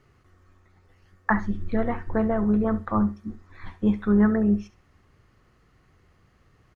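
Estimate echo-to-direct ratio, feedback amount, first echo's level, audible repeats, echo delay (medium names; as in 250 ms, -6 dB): -15.5 dB, 18%, -15.5 dB, 2, 68 ms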